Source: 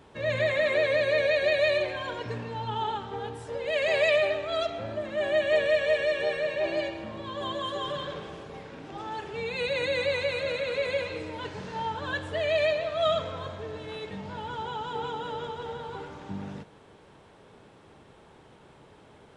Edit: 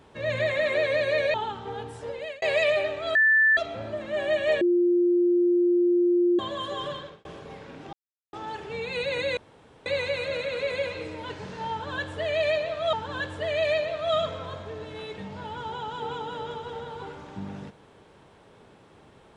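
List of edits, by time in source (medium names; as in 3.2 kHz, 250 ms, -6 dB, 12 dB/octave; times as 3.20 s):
1.34–2.80 s: delete
3.54–3.88 s: fade out
4.61 s: add tone 1.76 kHz -16 dBFS 0.42 s
5.65–7.43 s: bleep 351 Hz -18 dBFS
7.93–8.29 s: fade out
8.97 s: insert silence 0.40 s
10.01 s: insert room tone 0.49 s
11.86–13.08 s: loop, 2 plays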